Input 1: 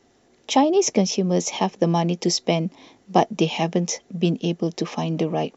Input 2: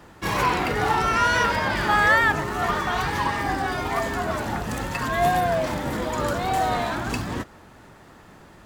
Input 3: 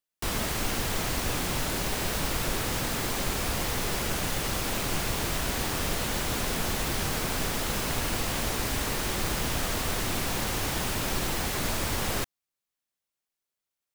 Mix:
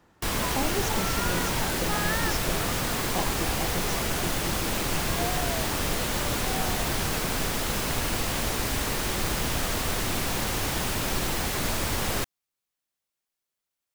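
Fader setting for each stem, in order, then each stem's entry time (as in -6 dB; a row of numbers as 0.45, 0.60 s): -14.5, -13.5, +1.5 dB; 0.00, 0.00, 0.00 s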